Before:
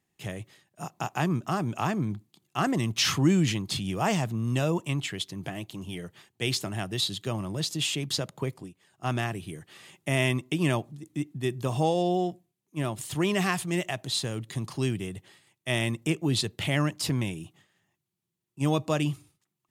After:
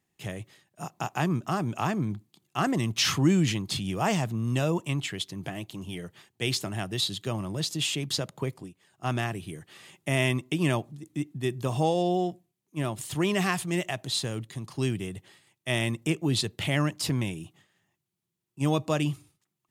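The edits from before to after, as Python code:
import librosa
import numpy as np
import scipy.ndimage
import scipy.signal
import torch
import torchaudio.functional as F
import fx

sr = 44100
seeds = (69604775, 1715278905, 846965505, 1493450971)

y = fx.edit(x, sr, fx.clip_gain(start_s=14.47, length_s=0.31, db=-4.5), tone=tone)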